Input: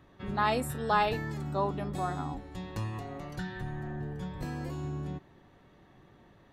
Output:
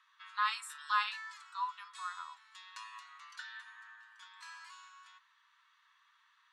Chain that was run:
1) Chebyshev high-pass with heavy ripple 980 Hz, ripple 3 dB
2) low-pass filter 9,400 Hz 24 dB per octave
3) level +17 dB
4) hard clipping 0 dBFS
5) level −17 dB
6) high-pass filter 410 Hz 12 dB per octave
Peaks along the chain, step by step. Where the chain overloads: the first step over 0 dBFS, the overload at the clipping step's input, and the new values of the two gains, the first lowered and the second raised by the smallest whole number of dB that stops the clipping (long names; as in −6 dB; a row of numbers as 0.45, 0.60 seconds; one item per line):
−19.0, −19.0, −2.0, −2.0, −19.0, −19.0 dBFS
no step passes full scale